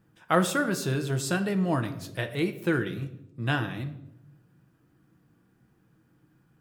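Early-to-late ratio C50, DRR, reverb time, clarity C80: 12.5 dB, 7.0 dB, 0.80 s, 15.0 dB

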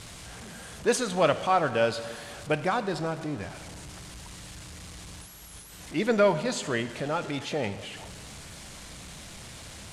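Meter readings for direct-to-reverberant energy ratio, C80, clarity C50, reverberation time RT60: 11.5 dB, 14.0 dB, 13.0 dB, 1.8 s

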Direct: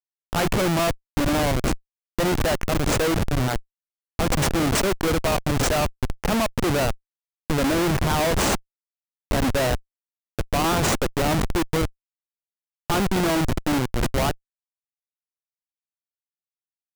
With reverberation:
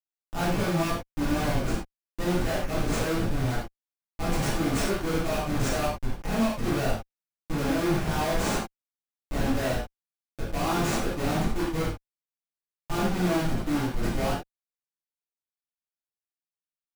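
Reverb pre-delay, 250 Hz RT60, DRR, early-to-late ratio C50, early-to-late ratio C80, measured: 3 ms, no reading, -10.5 dB, 1.5 dB, 6.5 dB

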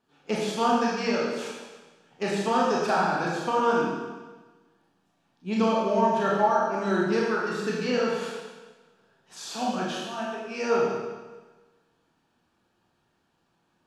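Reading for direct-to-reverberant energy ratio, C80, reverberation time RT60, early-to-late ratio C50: -5.0 dB, 1.5 dB, 1.3 s, -0.5 dB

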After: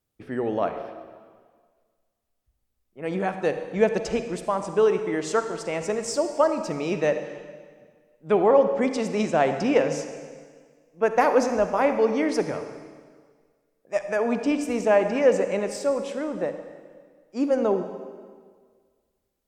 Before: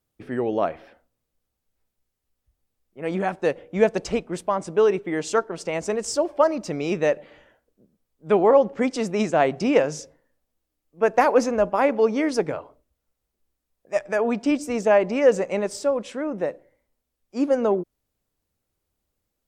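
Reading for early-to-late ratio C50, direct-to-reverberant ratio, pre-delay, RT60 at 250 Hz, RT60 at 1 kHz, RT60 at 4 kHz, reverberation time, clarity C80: 8.5 dB, 8.0 dB, 34 ms, 1.8 s, 1.7 s, 1.6 s, 1.7 s, 9.5 dB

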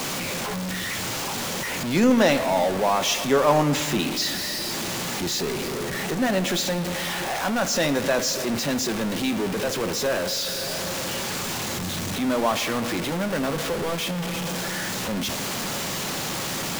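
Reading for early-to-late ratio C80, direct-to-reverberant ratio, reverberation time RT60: 14.5 dB, 11.0 dB, 2.1 s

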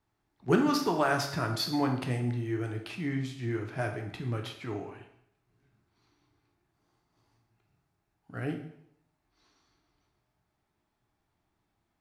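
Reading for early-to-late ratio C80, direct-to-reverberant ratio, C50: 11.0 dB, 3.5 dB, 8.0 dB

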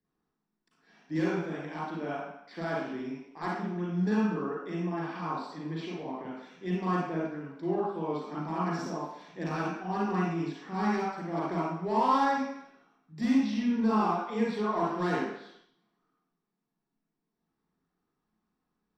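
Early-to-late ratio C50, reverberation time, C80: -2.5 dB, 0.75 s, 2.5 dB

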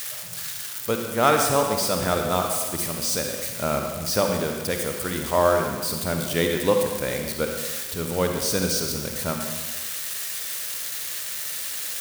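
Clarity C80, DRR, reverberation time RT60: 5.0 dB, 3.0 dB, 1.3 s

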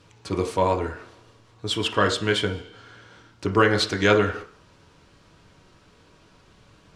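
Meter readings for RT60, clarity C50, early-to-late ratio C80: 0.45 s, 12.0 dB, 17.0 dB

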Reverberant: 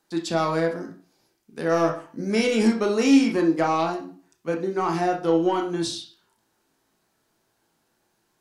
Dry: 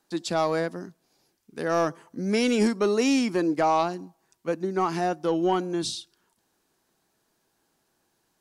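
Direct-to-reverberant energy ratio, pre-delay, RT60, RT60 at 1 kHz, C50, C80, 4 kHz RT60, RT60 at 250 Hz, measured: 1.0 dB, 18 ms, 0.40 s, 0.40 s, 9.5 dB, 14.5 dB, 0.35 s, 0.40 s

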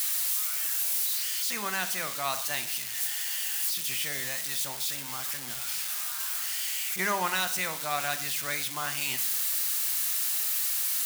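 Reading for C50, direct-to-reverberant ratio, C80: 13.5 dB, 10.0 dB, 17.5 dB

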